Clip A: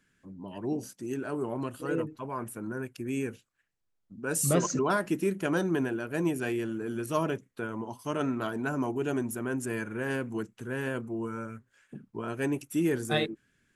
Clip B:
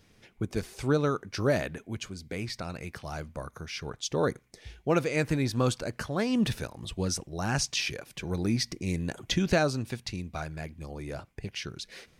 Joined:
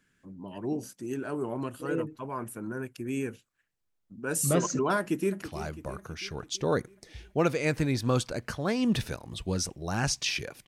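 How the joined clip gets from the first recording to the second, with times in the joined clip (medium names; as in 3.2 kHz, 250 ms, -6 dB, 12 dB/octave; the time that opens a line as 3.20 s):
clip A
4.99–5.42 s: echo throw 330 ms, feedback 60%, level -13 dB
5.42 s: go over to clip B from 2.93 s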